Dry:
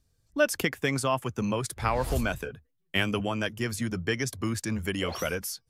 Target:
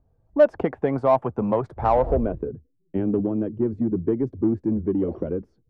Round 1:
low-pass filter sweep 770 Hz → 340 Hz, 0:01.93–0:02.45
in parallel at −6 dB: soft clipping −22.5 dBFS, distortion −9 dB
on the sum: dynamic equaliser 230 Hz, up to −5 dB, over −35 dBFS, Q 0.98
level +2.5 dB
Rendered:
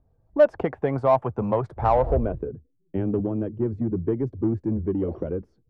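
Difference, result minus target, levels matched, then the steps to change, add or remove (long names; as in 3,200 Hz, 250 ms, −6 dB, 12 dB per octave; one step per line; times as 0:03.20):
125 Hz band +3.5 dB
change: dynamic equaliser 110 Hz, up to −5 dB, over −35 dBFS, Q 0.98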